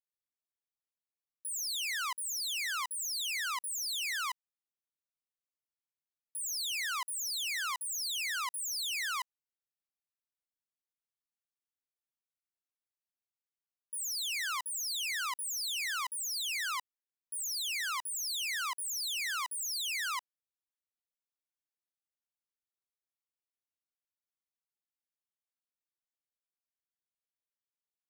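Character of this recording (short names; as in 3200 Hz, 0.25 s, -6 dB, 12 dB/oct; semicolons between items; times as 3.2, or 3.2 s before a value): noise floor -96 dBFS; spectral tilt -3.5 dB/oct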